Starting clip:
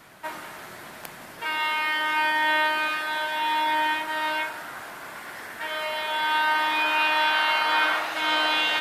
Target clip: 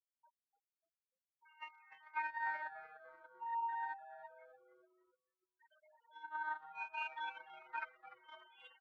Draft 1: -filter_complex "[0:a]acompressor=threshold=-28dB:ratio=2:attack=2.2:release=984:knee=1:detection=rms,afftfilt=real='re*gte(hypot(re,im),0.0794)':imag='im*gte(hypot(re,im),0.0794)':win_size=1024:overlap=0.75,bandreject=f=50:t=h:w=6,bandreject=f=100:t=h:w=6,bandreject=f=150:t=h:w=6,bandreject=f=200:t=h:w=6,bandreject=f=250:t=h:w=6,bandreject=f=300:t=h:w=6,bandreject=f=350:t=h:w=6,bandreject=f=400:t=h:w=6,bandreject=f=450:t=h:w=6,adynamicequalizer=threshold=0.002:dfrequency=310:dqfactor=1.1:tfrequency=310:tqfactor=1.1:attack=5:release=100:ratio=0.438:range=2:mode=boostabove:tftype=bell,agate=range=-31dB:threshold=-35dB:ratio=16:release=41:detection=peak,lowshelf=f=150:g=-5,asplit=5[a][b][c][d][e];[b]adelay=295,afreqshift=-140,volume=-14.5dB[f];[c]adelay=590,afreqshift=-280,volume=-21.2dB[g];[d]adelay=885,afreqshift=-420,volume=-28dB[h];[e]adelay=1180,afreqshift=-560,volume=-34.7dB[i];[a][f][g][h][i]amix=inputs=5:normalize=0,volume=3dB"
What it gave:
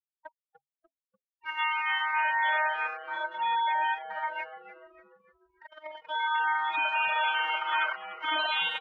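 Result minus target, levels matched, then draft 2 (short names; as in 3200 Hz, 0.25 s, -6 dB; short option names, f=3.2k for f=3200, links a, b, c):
compressor: peak gain reduction -4 dB
-filter_complex "[0:a]acompressor=threshold=-35.5dB:ratio=2:attack=2.2:release=984:knee=1:detection=rms,afftfilt=real='re*gte(hypot(re,im),0.0794)':imag='im*gte(hypot(re,im),0.0794)':win_size=1024:overlap=0.75,bandreject=f=50:t=h:w=6,bandreject=f=100:t=h:w=6,bandreject=f=150:t=h:w=6,bandreject=f=200:t=h:w=6,bandreject=f=250:t=h:w=6,bandreject=f=300:t=h:w=6,bandreject=f=350:t=h:w=6,bandreject=f=400:t=h:w=6,bandreject=f=450:t=h:w=6,adynamicequalizer=threshold=0.002:dfrequency=310:dqfactor=1.1:tfrequency=310:tqfactor=1.1:attack=5:release=100:ratio=0.438:range=2:mode=boostabove:tftype=bell,agate=range=-31dB:threshold=-35dB:ratio=16:release=41:detection=peak,lowshelf=f=150:g=-5,asplit=5[a][b][c][d][e];[b]adelay=295,afreqshift=-140,volume=-14.5dB[f];[c]adelay=590,afreqshift=-280,volume=-21.2dB[g];[d]adelay=885,afreqshift=-420,volume=-28dB[h];[e]adelay=1180,afreqshift=-560,volume=-34.7dB[i];[a][f][g][h][i]amix=inputs=5:normalize=0,volume=3dB"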